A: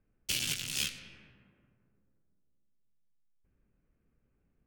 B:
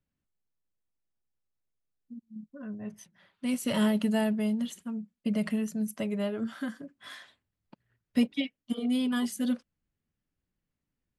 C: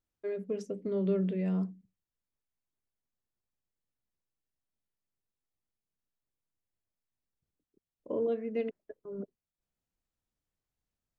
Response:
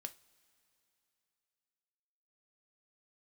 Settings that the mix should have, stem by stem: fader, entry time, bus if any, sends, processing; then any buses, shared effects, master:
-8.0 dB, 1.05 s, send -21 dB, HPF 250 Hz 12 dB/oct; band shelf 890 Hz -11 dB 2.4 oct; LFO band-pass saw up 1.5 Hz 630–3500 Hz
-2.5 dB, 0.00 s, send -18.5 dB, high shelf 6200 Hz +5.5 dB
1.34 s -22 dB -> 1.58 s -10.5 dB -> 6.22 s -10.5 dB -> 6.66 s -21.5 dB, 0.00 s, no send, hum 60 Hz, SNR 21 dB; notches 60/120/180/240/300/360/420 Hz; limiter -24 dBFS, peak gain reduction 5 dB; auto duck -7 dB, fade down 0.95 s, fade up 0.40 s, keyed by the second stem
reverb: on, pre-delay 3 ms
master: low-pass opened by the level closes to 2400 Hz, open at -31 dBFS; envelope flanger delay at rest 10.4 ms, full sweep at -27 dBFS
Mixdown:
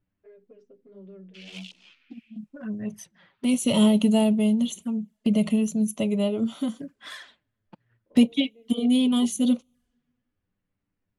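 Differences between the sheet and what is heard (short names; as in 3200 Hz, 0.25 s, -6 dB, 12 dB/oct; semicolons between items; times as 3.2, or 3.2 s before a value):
stem A -8.0 dB -> +1.5 dB; stem B -2.5 dB -> +7.0 dB; stem C -22.0 dB -> -14.0 dB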